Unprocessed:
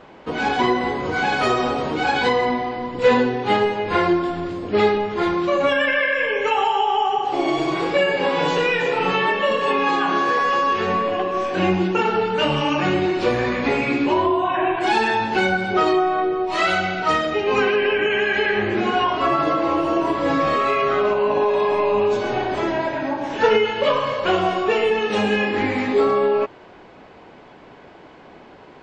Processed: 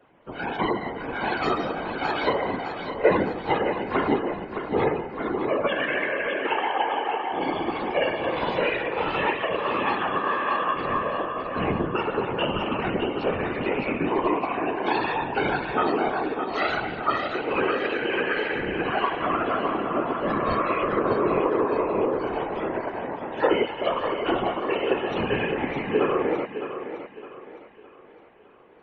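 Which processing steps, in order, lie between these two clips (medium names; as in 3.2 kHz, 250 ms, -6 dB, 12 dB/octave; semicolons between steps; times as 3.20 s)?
spectral gate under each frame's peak -25 dB strong; 20.48–21.66 s: tone controls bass +11 dB, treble +5 dB; whisper effect; thinning echo 611 ms, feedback 53%, high-pass 170 Hz, level -6 dB; upward expansion 1.5:1, over -33 dBFS; trim -3 dB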